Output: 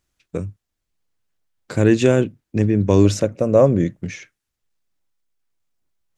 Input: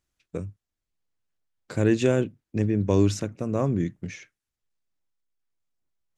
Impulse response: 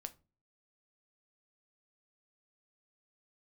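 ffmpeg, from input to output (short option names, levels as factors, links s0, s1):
-filter_complex "[0:a]asettb=1/sr,asplit=3[s0][s1][s2];[s0]atrim=end=3.054[s3];[s1]atrim=start=3.05:end=3.97,asetpts=PTS-STARTPTS,afade=t=in:d=0.004:c=qsin,afade=t=out:st=0.916:d=0.004:c=qsin,equalizer=f=550:t=o:w=0.5:g=11.5[s4];[s2]atrim=start=3.966[s5];[s3][s4]acrossfade=d=0.004:c1=hsin:c2=qsin[s6];[s6][s5]acrossfade=d=0.004:c1=qsin:c2=hsin,volume=2.11"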